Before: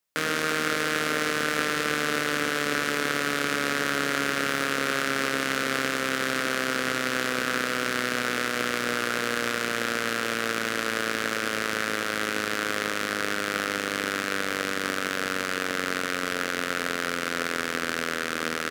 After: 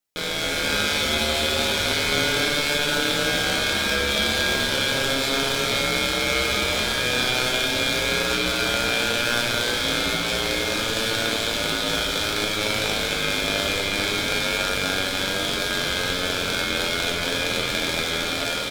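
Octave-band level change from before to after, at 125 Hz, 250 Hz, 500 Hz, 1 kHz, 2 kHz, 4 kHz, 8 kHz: +8.0 dB, +2.0 dB, +4.0 dB, +1.0 dB, +2.5 dB, +10.0 dB, +5.5 dB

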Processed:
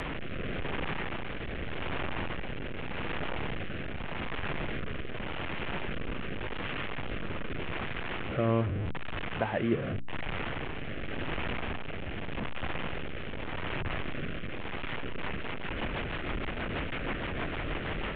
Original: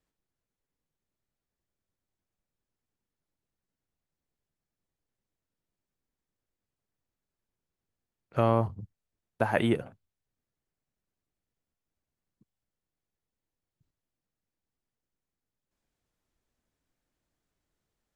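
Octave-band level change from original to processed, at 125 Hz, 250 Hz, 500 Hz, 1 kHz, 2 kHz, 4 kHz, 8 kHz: +3.5 dB, +3.0 dB, +1.0 dB, +2.0 dB, +9.5 dB, +12.5 dB, no reading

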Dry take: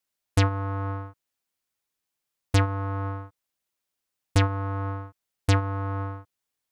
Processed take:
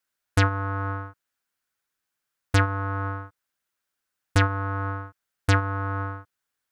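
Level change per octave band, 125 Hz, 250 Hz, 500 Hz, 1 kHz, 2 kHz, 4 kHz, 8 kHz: 0.0 dB, 0.0 dB, +0.5 dB, +3.5 dB, +7.5 dB, +0.5 dB, 0.0 dB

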